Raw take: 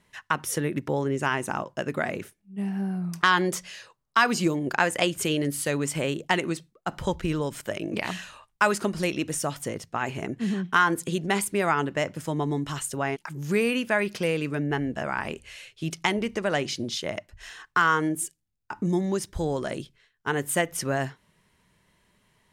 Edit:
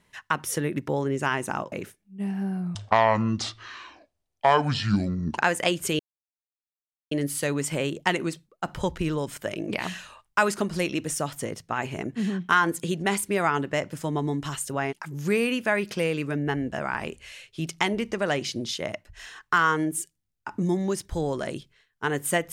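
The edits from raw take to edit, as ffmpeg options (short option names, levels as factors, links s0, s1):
-filter_complex "[0:a]asplit=5[s0][s1][s2][s3][s4];[s0]atrim=end=1.722[s5];[s1]atrim=start=2.098:end=3.134[s6];[s2]atrim=start=3.13:end=4.73,asetpts=PTS-STARTPTS,asetrate=26901,aresample=44100,atrim=end_sample=115672,asetpts=PTS-STARTPTS[s7];[s3]atrim=start=4.726:end=5.35,asetpts=PTS-STARTPTS,afade=t=out:st=0.62:d=0.004:c=hsin,apad=pad_dur=1.12[s8];[s4]atrim=start=5.35,asetpts=PTS-STARTPTS,afade=t=in:d=0.004:c=hsin[s9];[s5][s6]acrossfade=d=0.004:c1=hsin:c2=hsin[s10];[s10][s7]acrossfade=d=0.004:c1=hsin:c2=hsin[s11];[s8][s9]concat=n=2:v=0:a=1[s12];[s11][s12]acrossfade=d=0.004:c1=hsin:c2=hsin"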